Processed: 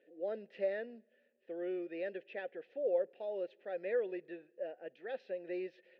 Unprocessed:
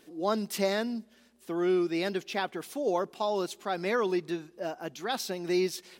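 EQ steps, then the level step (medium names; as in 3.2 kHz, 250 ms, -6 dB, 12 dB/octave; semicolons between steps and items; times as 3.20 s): vowel filter e; distance through air 340 m; +2.5 dB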